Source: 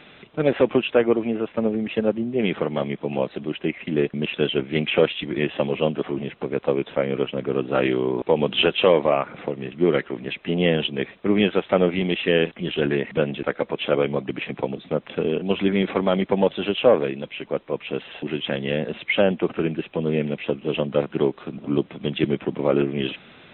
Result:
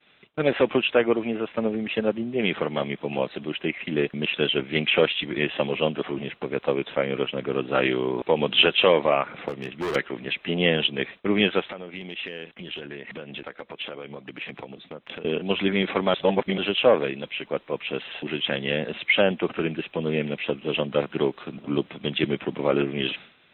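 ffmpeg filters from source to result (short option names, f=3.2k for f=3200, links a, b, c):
-filter_complex "[0:a]asettb=1/sr,asplit=3[a][b][c];[a]atrim=end=9.484[d];[b]atrim=start=9.48:end=9.96,asetpts=PTS-STARTPTS,afade=t=in:d=0.004:c=qsin,afade=t=out:st=0.476:d=0.004:c=qsin,volume=22.5dB,asoftclip=hard,volume=-22.5dB[e];[c]atrim=start=9.956[f];[d][e]acrossfade=d=0.004:c1=hsin:c2=qsin[g];[g][f]acrossfade=d=0.004:c1=qsin:c2=hsin,asettb=1/sr,asplit=3[h][i][j];[h]atrim=end=11.614[k];[i]atrim=start=11.61:end=15.25,asetpts=PTS-STARTPTS,afade=t=in:d=0.004:c=qsin,afade=t=out:st=3.636:d=0.004:c=qsin,acompressor=threshold=-31dB:ratio=8:attack=3.2:release=140:knee=1:detection=peak[l];[j]atrim=start=15.246[m];[k][l]acrossfade=d=0.004:c1=hsin:c2=qsin[n];[n][m]acrossfade=d=0.004:c1=qsin:c2=hsin,asplit=3[o][p][q];[o]atrim=end=16.142[r];[p]atrim=start=16.138:end=16.582,asetpts=PTS-STARTPTS,areverse[s];[q]atrim=start=16.578[t];[r][s]acrossfade=d=0.004:c1=hsin:c2=hsin[u];[u][t]acrossfade=d=0.004:c1=hsin:c2=hsin,tiltshelf=f=970:g=-4,agate=range=-33dB:threshold=-37dB:ratio=3:detection=peak"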